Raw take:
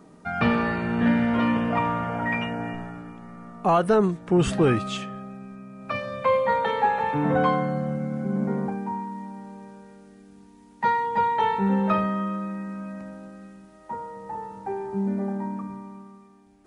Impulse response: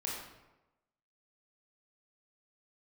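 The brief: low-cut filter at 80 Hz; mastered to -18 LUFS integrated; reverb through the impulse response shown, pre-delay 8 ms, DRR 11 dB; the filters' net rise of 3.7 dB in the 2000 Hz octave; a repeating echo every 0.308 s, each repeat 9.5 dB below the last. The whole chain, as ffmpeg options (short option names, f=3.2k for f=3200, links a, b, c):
-filter_complex "[0:a]highpass=80,equalizer=f=2k:t=o:g=4.5,aecho=1:1:308|616|924|1232:0.335|0.111|0.0365|0.012,asplit=2[a][b];[1:a]atrim=start_sample=2205,adelay=8[c];[b][c]afir=irnorm=-1:irlink=0,volume=-13.5dB[d];[a][d]amix=inputs=2:normalize=0,volume=5.5dB"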